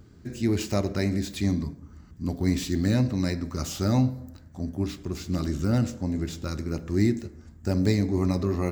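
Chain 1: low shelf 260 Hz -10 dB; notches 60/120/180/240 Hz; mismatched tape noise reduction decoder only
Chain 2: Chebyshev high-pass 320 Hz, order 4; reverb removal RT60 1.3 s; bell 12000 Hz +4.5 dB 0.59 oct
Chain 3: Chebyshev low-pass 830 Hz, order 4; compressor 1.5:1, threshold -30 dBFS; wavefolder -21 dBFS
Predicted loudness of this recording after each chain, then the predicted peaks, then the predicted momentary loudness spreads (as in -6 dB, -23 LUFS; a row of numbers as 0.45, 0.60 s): -32.5, -35.0, -32.0 LUFS; -13.5, -17.0, -21.0 dBFS; 12, 11, 9 LU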